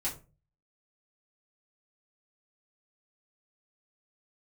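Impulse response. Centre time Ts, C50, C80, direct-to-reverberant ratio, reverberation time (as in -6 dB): 21 ms, 11.0 dB, 16.5 dB, -8.0 dB, 0.35 s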